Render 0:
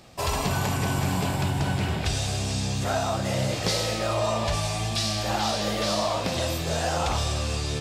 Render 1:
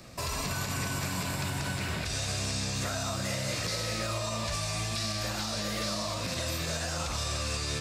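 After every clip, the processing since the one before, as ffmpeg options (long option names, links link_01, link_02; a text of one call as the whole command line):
ffmpeg -i in.wav -filter_complex "[0:a]acrossover=split=330|780|2700|6600[link_01][link_02][link_03][link_04][link_05];[link_01]acompressor=threshold=-37dB:ratio=4[link_06];[link_02]acompressor=threshold=-44dB:ratio=4[link_07];[link_03]acompressor=threshold=-38dB:ratio=4[link_08];[link_04]acompressor=threshold=-37dB:ratio=4[link_09];[link_05]acompressor=threshold=-44dB:ratio=4[link_10];[link_06][link_07][link_08][link_09][link_10]amix=inputs=5:normalize=0,alimiter=level_in=0.5dB:limit=-24dB:level=0:latency=1:release=59,volume=-0.5dB,equalizer=frequency=400:width_type=o:width=0.33:gain=-4,equalizer=frequency=800:width_type=o:width=0.33:gain=-10,equalizer=frequency=3150:width_type=o:width=0.33:gain=-7,volume=3dB" out.wav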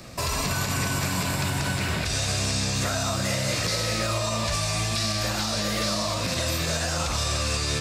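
ffmpeg -i in.wav -af "acontrast=63" out.wav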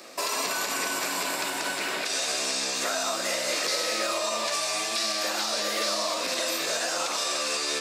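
ffmpeg -i in.wav -af "highpass=frequency=310:width=0.5412,highpass=frequency=310:width=1.3066" out.wav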